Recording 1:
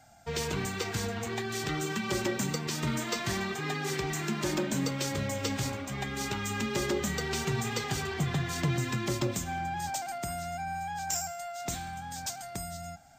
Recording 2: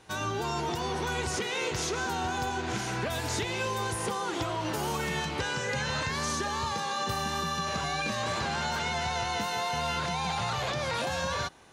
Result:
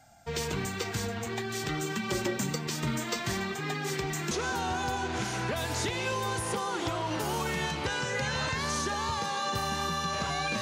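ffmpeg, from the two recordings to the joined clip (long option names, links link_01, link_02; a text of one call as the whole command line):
ffmpeg -i cue0.wav -i cue1.wav -filter_complex "[0:a]apad=whole_dur=10.61,atrim=end=10.61,atrim=end=4.312[link_01];[1:a]atrim=start=1.848:end=8.15[link_02];[link_01][link_02]acrossfade=duration=0.004:curve1=hsin:curve2=hsin" out.wav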